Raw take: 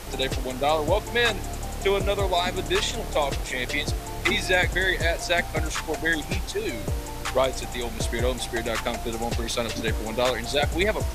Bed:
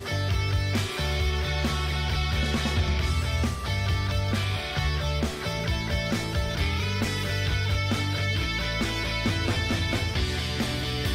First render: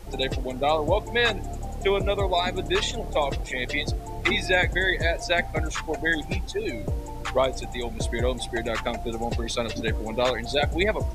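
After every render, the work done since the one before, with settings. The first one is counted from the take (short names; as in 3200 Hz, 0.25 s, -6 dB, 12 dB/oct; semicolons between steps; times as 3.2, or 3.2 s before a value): denoiser 12 dB, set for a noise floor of -34 dBFS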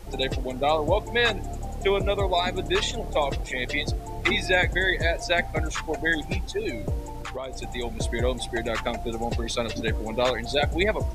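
7.06–7.62 compressor 5:1, threshold -30 dBFS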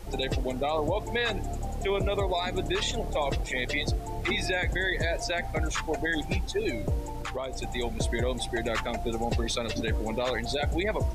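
limiter -18.5 dBFS, peak gain reduction 10 dB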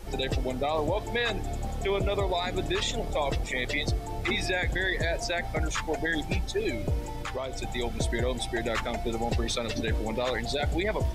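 add bed -21 dB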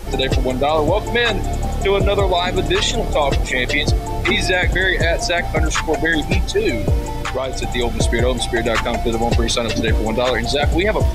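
gain +11.5 dB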